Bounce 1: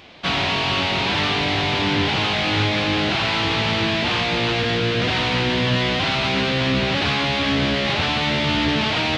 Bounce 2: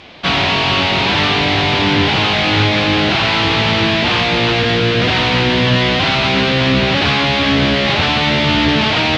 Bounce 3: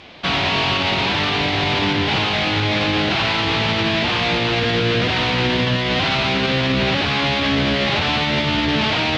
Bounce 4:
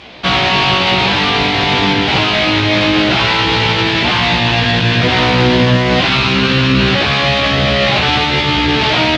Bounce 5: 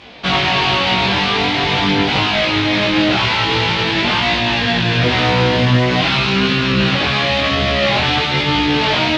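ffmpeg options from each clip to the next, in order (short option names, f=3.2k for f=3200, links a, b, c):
-af "lowpass=6.9k,volume=6.5dB"
-af "alimiter=limit=-7.5dB:level=0:latency=1:release=29,volume=-3dB"
-filter_complex "[0:a]asplit=2[a][b];[b]adelay=16,volume=-3dB[c];[a][c]amix=inputs=2:normalize=0,volume=4.5dB"
-af "flanger=delay=20:depth=6:speed=0.46"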